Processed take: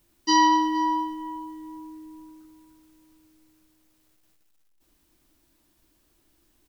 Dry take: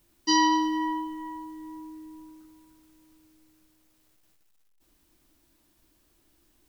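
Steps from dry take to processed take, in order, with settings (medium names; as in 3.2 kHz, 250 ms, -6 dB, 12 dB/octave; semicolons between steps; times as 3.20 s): dynamic bell 890 Hz, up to +5 dB, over -37 dBFS, Q 0.83; on a send: delay 469 ms -20 dB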